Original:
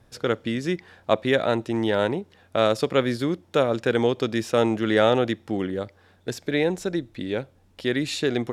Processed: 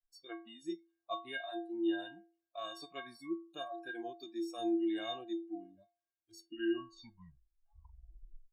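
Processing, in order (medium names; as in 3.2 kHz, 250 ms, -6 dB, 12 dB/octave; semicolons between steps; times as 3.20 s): tape stop on the ending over 2.44 s; spectral noise reduction 29 dB; inharmonic resonator 330 Hz, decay 0.43 s, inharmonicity 0.03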